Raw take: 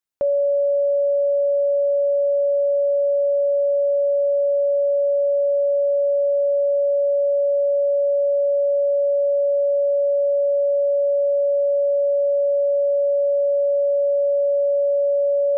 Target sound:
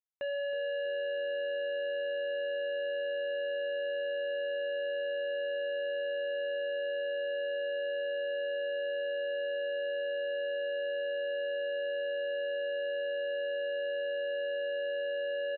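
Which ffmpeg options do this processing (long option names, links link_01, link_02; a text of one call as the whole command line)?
ffmpeg -i in.wav -filter_complex "[0:a]anlmdn=15.8,highpass=frequency=490:poles=1,aemphasis=mode=reproduction:type=50fm,asoftclip=type=tanh:threshold=-33.5dB,asplit=4[link_01][link_02][link_03][link_04];[link_02]adelay=320,afreqshift=-91,volume=-14dB[link_05];[link_03]adelay=640,afreqshift=-182,volume=-24.5dB[link_06];[link_04]adelay=960,afreqshift=-273,volume=-34.9dB[link_07];[link_01][link_05][link_06][link_07]amix=inputs=4:normalize=0,aresample=8000,aresample=44100" -ar 48000 -c:a libopus -b:a 64k out.opus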